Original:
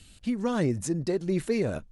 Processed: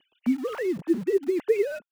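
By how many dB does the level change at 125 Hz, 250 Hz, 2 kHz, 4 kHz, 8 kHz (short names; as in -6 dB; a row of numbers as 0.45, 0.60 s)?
-14.0 dB, +1.0 dB, +1.5 dB, n/a, under -10 dB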